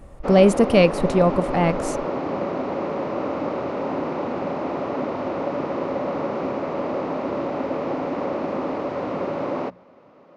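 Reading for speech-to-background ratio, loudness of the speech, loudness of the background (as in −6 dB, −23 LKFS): 8.0 dB, −18.5 LKFS, −26.5 LKFS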